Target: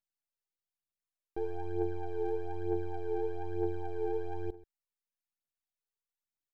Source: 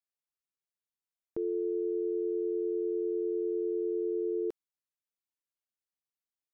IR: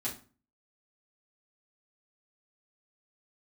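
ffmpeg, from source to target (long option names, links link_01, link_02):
-filter_complex "[0:a]aeval=exprs='if(lt(val(0),0),0.251*val(0),val(0))':channel_layout=same,asplit=2[link_01][link_02];[link_02]adelay=134.1,volume=-19dB,highshelf=frequency=4000:gain=-3.02[link_03];[link_01][link_03]amix=inputs=2:normalize=0,aphaser=in_gain=1:out_gain=1:delay=2.6:decay=0.66:speed=1.1:type=triangular,volume=-4dB"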